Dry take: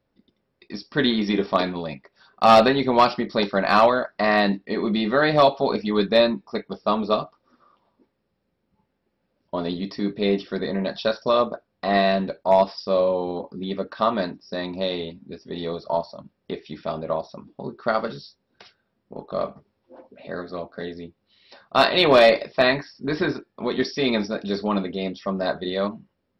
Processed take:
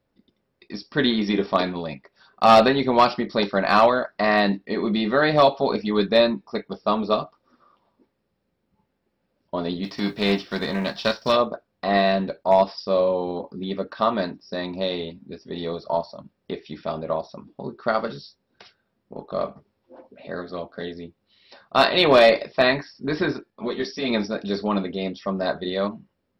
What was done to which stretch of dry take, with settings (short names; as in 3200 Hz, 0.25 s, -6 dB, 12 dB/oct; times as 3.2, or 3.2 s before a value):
9.83–11.35 spectral whitening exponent 0.6
20.37–20.92 bell 3200 Hz +8 dB 0.22 oct
23.5–24.1 ensemble effect